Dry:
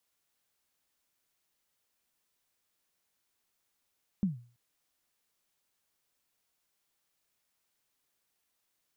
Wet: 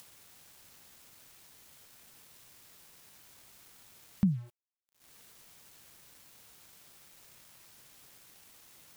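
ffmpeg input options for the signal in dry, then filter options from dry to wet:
-f lavfi -i "aevalsrc='0.0794*pow(10,-3*t/0.4)*sin(2*PI*(210*0.141/log(120/210)*(exp(log(120/210)*min(t,0.141)/0.141)-1)+120*max(t-0.141,0)))':duration=0.33:sample_rate=44100"
-af "equalizer=frequency=120:width_type=o:width=1.7:gain=9,acompressor=mode=upward:threshold=-34dB:ratio=2.5,aeval=exprs='val(0)*gte(abs(val(0)),0.00266)':channel_layout=same"

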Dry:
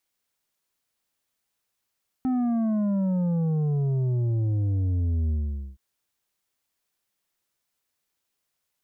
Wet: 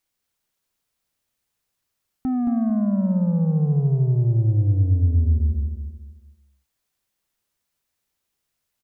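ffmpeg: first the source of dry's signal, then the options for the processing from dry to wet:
-f lavfi -i "aevalsrc='0.075*clip((3.52-t)/0.47,0,1)*tanh(2.24*sin(2*PI*260*3.52/log(65/260)*(exp(log(65/260)*t/3.52)-1)))/tanh(2.24)':duration=3.52:sample_rate=44100"
-af "lowshelf=frequency=150:gain=7.5,aecho=1:1:222|444|666|888:0.501|0.18|0.065|0.0234"

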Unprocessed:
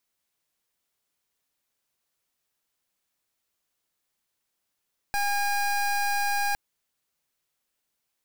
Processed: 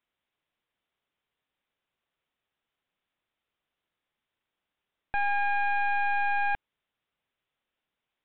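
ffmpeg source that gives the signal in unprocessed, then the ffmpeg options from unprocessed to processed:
-f lavfi -i "aevalsrc='0.0531*(2*lt(mod(812*t,1),0.24)-1)':duration=1.41:sample_rate=44100"
-af "aresample=8000,aresample=44100"

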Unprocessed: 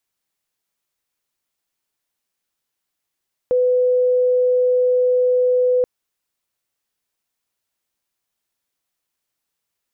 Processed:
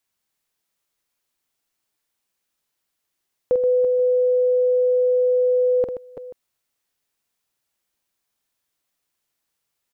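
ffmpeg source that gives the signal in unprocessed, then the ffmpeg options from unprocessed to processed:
-f lavfi -i "sine=frequency=500:duration=2.33:sample_rate=44100,volume=5.06dB"
-af "aecho=1:1:47|128|330|337|484:0.447|0.299|0.158|0.299|0.1"

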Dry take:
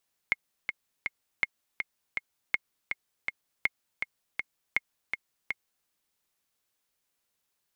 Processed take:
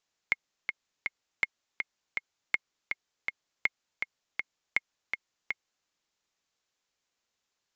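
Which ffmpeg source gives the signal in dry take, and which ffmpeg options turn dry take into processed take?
-f lavfi -i "aevalsrc='pow(10,(-11-6*gte(mod(t,3*60/162),60/162))/20)*sin(2*PI*2150*mod(t,60/162))*exp(-6.91*mod(t,60/162)/0.03)':duration=5.55:sample_rate=44100"
-af "bass=frequency=250:gain=-3,treble=frequency=4000:gain=1,aresample=16000,aresample=44100"

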